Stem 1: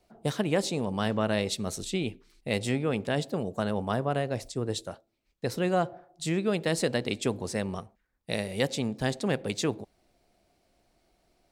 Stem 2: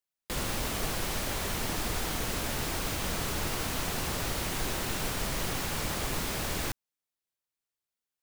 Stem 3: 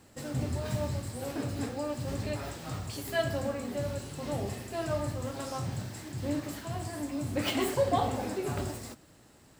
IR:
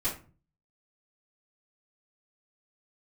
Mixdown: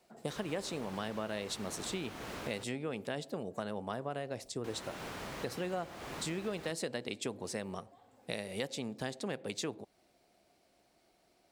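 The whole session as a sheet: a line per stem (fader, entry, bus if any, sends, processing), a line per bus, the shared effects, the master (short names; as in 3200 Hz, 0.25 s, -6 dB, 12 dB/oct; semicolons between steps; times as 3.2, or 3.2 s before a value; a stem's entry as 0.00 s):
+0.5 dB, 0.00 s, no send, dry
-5.0 dB, 0.00 s, muted 2.64–4.64, no send, LPF 2100 Hz 6 dB/oct
-16.0 dB, 0.00 s, no send, compressor 6:1, threshold -34 dBFS, peak gain reduction 12 dB; auto duck -8 dB, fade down 0.40 s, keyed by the first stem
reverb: off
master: HPF 210 Hz 6 dB/oct; compressor 3:1, threshold -37 dBFS, peak gain reduction 12.5 dB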